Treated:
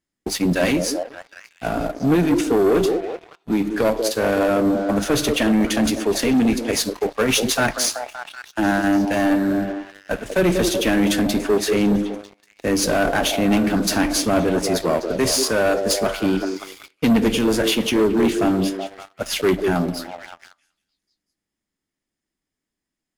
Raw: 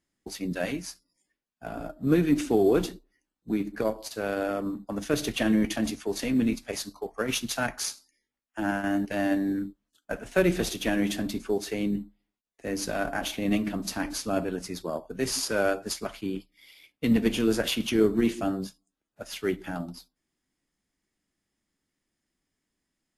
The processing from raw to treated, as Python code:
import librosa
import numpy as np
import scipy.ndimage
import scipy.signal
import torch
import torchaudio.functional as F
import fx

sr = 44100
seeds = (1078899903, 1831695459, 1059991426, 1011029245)

y = fx.rider(x, sr, range_db=3, speed_s=0.5)
y = fx.echo_stepped(y, sr, ms=189, hz=410.0, octaves=0.7, feedback_pct=70, wet_db=-5.5)
y = fx.leveller(y, sr, passes=3)